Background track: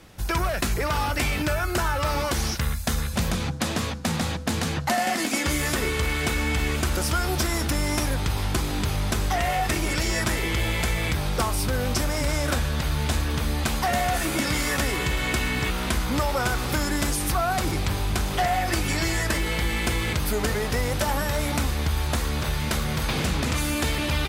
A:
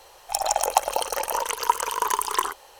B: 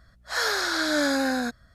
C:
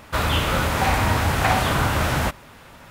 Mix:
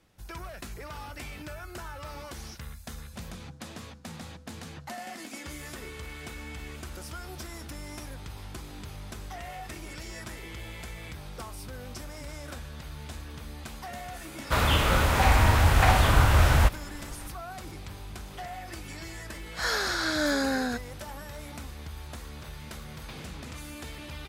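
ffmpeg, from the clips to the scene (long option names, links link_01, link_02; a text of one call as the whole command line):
ffmpeg -i bed.wav -i cue0.wav -i cue1.wav -i cue2.wav -filter_complex "[0:a]volume=-16dB[link_01];[3:a]asubboost=boost=8.5:cutoff=77,atrim=end=2.9,asetpts=PTS-STARTPTS,volume=-2.5dB,afade=type=in:duration=0.004:curve=hsin,afade=type=out:start_time=2.896:duration=0.004:curve=hsin,adelay=14380[link_02];[2:a]atrim=end=1.74,asetpts=PTS-STARTPTS,volume=-3dB,afade=type=in:duration=0.004:curve=hsin,afade=type=out:start_time=1.736:duration=0.004:curve=hsin,adelay=19270[link_03];[link_01][link_02][link_03]amix=inputs=3:normalize=0" out.wav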